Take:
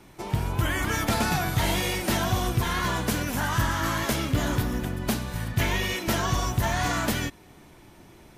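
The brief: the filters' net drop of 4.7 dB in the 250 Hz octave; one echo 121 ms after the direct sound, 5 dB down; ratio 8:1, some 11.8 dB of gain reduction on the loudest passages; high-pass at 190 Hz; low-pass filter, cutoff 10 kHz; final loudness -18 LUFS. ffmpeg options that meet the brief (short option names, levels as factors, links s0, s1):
-af "highpass=190,lowpass=10000,equalizer=f=250:t=o:g=-4,acompressor=threshold=0.0158:ratio=8,aecho=1:1:121:0.562,volume=9.44"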